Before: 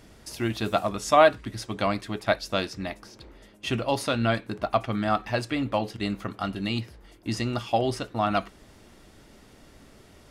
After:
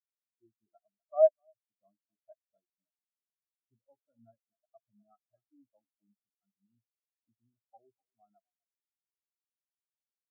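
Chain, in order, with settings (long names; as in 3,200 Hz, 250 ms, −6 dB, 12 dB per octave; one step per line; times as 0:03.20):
far-end echo of a speakerphone 250 ms, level −8 dB
every bin expanded away from the loudest bin 4 to 1
level −7.5 dB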